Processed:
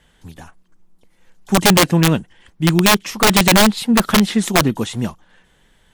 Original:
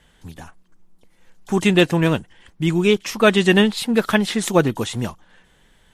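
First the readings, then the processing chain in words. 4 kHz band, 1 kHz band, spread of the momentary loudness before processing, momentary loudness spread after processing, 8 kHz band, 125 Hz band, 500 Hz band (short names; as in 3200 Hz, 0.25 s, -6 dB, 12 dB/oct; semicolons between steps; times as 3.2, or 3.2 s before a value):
+6.5 dB, +8.0 dB, 10 LU, 11 LU, +11.0 dB, +4.0 dB, -1.5 dB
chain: dynamic EQ 200 Hz, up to +7 dB, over -29 dBFS, Q 1.3; wrapped overs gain 5.5 dB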